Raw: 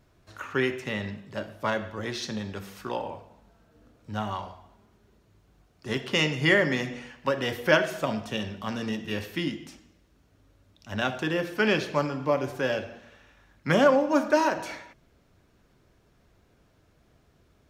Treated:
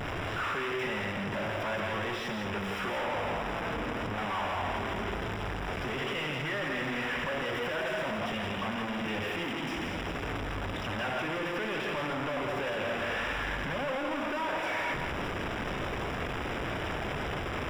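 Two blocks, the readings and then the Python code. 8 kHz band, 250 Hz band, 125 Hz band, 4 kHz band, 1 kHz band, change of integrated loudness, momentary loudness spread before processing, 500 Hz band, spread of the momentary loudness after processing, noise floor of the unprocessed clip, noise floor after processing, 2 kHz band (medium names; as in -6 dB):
-5.0 dB, -5.0 dB, -2.5 dB, -2.5 dB, -0.5 dB, -5.5 dB, 16 LU, -6.0 dB, 3 LU, -64 dBFS, -35 dBFS, -2.0 dB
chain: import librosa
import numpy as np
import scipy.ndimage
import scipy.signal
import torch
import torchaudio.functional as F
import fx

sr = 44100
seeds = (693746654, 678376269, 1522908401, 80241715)

y = np.sign(x) * np.sqrt(np.mean(np.square(x)))
y = scipy.signal.savgol_filter(y, 25, 4, mode='constant')
y = fx.low_shelf(y, sr, hz=380.0, db=-7.0)
y = y + 10.0 ** (-5.5 / 20.0) * np.pad(y, (int(167 * sr / 1000.0), 0))[:len(y)]
y = F.gain(torch.from_numpy(y), -1.0).numpy()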